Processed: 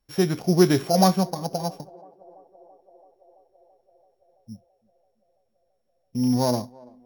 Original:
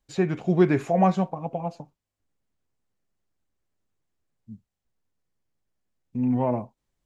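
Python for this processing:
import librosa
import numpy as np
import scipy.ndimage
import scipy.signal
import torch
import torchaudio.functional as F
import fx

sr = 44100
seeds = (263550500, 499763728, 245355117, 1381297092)

y = np.r_[np.sort(x[:len(x) // 8 * 8].reshape(-1, 8), axis=1).ravel(), x[len(x) // 8 * 8:]]
y = fx.echo_banded(y, sr, ms=334, feedback_pct=79, hz=560.0, wet_db=-23.0)
y = y * librosa.db_to_amplitude(2.0)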